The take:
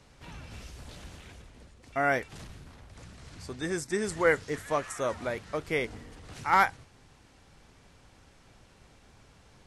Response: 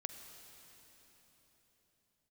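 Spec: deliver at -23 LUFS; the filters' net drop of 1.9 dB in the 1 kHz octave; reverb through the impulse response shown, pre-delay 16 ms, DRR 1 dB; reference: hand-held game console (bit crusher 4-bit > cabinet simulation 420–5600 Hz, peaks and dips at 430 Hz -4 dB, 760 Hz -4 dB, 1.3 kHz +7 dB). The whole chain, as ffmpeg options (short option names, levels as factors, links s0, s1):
-filter_complex "[0:a]equalizer=f=1000:t=o:g=-6.5,asplit=2[s0][s1];[1:a]atrim=start_sample=2205,adelay=16[s2];[s1][s2]afir=irnorm=-1:irlink=0,volume=1.19[s3];[s0][s3]amix=inputs=2:normalize=0,acrusher=bits=3:mix=0:aa=0.000001,highpass=420,equalizer=f=430:t=q:w=4:g=-4,equalizer=f=760:t=q:w=4:g=-4,equalizer=f=1300:t=q:w=4:g=7,lowpass=f=5600:w=0.5412,lowpass=f=5600:w=1.3066,volume=1.68"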